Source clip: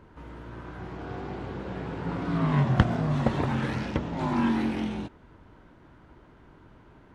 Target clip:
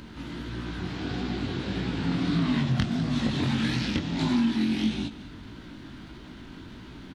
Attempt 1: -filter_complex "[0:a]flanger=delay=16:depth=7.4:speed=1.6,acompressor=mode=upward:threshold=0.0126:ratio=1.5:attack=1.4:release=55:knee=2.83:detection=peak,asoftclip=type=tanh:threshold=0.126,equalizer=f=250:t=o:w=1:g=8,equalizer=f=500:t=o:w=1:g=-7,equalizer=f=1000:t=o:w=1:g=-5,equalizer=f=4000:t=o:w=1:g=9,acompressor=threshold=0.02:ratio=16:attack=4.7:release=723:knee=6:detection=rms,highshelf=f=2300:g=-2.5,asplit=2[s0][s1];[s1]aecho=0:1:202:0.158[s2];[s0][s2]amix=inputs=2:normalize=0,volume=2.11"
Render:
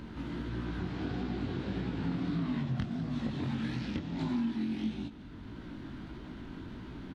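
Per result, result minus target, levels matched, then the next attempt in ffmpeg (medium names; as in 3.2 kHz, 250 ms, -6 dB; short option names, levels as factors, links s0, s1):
compression: peak gain reduction +8 dB; 4 kHz band -5.0 dB
-filter_complex "[0:a]flanger=delay=16:depth=7.4:speed=1.6,acompressor=mode=upward:threshold=0.0126:ratio=1.5:attack=1.4:release=55:knee=2.83:detection=peak,asoftclip=type=tanh:threshold=0.126,equalizer=f=250:t=o:w=1:g=8,equalizer=f=500:t=o:w=1:g=-7,equalizer=f=1000:t=o:w=1:g=-5,equalizer=f=4000:t=o:w=1:g=9,acompressor=threshold=0.0531:ratio=16:attack=4.7:release=723:knee=6:detection=rms,highshelf=f=2300:g=-2.5,asplit=2[s0][s1];[s1]aecho=0:1:202:0.158[s2];[s0][s2]amix=inputs=2:normalize=0,volume=2.11"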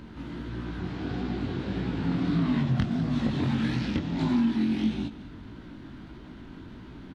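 4 kHz band -6.5 dB
-filter_complex "[0:a]flanger=delay=16:depth=7.4:speed=1.6,acompressor=mode=upward:threshold=0.0126:ratio=1.5:attack=1.4:release=55:knee=2.83:detection=peak,asoftclip=type=tanh:threshold=0.126,equalizer=f=250:t=o:w=1:g=8,equalizer=f=500:t=o:w=1:g=-7,equalizer=f=1000:t=o:w=1:g=-5,equalizer=f=4000:t=o:w=1:g=9,acompressor=threshold=0.0531:ratio=16:attack=4.7:release=723:knee=6:detection=rms,highshelf=f=2300:g=7.5,asplit=2[s0][s1];[s1]aecho=0:1:202:0.158[s2];[s0][s2]amix=inputs=2:normalize=0,volume=2.11"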